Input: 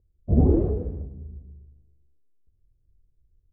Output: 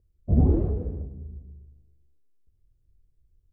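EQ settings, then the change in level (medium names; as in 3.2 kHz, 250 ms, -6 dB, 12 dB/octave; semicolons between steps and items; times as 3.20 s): dynamic bell 430 Hz, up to -6 dB, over -33 dBFS, Q 1; 0.0 dB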